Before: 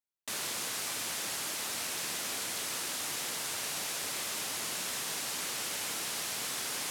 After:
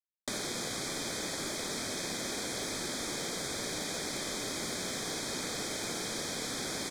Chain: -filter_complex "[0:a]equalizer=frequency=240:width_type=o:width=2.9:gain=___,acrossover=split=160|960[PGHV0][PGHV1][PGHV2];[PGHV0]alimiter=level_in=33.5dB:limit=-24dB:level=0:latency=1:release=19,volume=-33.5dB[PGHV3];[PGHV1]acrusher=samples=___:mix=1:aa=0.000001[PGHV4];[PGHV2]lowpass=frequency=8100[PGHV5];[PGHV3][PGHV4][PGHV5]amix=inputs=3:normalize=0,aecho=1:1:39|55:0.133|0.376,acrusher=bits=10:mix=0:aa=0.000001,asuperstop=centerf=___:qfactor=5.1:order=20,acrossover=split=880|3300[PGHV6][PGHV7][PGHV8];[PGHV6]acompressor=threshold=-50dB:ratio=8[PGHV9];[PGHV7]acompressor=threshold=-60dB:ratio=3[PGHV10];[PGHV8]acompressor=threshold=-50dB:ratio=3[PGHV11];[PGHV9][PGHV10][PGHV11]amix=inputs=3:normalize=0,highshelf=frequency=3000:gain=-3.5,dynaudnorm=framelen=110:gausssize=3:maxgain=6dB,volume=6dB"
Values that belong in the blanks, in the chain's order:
6, 37, 2800